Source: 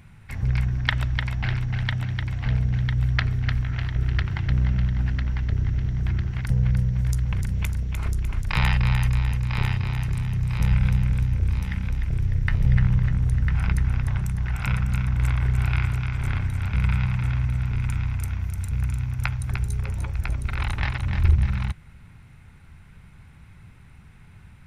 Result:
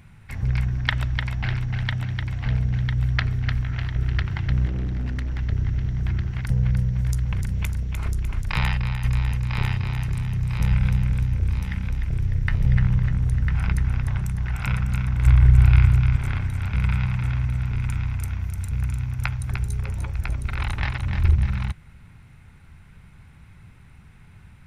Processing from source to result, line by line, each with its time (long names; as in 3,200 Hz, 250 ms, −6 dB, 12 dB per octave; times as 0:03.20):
0:04.66–0:05.39: hard clipping −23 dBFS
0:08.46–0:09.04: fade out, to −7 dB
0:15.26–0:16.16: low-shelf EQ 160 Hz +11 dB